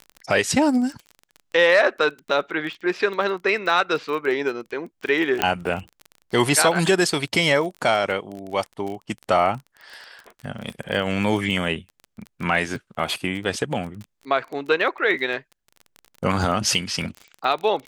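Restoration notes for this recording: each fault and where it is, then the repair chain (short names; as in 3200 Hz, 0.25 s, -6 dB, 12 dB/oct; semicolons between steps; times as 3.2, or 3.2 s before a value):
crackle 26/s -29 dBFS
5.42 pop -4 dBFS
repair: de-click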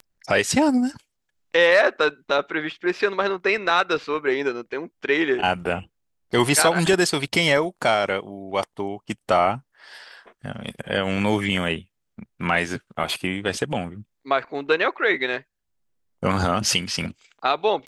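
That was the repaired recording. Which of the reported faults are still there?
none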